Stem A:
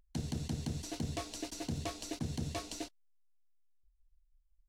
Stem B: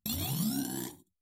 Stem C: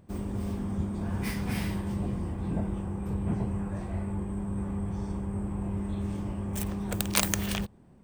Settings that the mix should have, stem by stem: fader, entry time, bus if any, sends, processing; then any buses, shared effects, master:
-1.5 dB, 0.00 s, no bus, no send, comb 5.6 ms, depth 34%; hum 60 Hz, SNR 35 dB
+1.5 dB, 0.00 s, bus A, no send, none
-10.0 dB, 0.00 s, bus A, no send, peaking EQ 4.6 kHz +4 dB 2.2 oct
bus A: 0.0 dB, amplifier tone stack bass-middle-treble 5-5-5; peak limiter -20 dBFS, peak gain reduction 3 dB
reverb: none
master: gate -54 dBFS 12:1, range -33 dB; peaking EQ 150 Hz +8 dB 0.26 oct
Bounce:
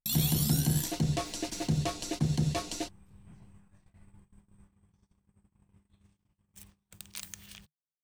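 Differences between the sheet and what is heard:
stem A -1.5 dB -> +5.5 dB; stem B +1.5 dB -> +11.5 dB

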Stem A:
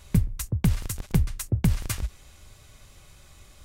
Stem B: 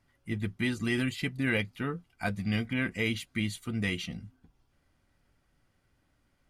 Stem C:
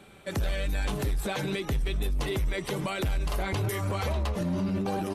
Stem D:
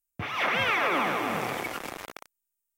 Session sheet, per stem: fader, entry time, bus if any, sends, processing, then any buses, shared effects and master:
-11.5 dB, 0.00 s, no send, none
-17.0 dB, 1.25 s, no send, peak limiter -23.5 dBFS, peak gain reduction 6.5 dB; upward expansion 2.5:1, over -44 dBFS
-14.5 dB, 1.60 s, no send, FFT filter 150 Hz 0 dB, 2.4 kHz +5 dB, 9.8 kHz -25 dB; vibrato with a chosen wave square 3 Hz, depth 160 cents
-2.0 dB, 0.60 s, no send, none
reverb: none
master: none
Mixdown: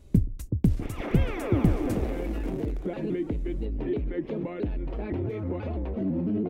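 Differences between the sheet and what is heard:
stem A -11.5 dB -> -1.5 dB; stem C -14.5 dB -> -3.5 dB; master: extra FFT filter 160 Hz 0 dB, 290 Hz +10 dB, 1.1 kHz -13 dB

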